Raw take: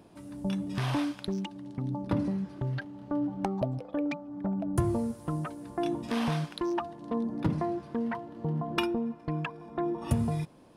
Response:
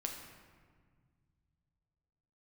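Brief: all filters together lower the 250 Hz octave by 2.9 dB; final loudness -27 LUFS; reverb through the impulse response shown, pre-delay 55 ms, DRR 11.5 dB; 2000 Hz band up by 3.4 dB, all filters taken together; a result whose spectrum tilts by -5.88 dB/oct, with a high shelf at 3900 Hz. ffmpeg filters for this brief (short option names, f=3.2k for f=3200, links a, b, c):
-filter_complex "[0:a]equalizer=f=250:t=o:g=-4,equalizer=f=2k:t=o:g=6,highshelf=f=3.9k:g=-6,asplit=2[a][b];[1:a]atrim=start_sample=2205,adelay=55[c];[b][c]afir=irnorm=-1:irlink=0,volume=-11.5dB[d];[a][d]amix=inputs=2:normalize=0,volume=6.5dB"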